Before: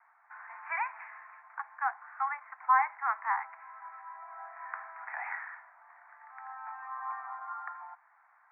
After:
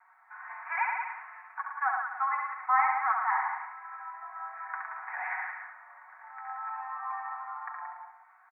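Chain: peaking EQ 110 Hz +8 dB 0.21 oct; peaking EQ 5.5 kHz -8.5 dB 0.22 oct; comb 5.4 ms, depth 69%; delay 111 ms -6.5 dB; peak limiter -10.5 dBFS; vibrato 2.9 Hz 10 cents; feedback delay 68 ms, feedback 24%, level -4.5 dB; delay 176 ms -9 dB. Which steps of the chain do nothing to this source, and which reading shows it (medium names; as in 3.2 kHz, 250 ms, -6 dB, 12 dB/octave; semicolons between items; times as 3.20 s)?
peaking EQ 110 Hz: input has nothing below 640 Hz; peaking EQ 5.5 kHz: input has nothing above 2.4 kHz; peak limiter -10.5 dBFS: peak at its input -14.0 dBFS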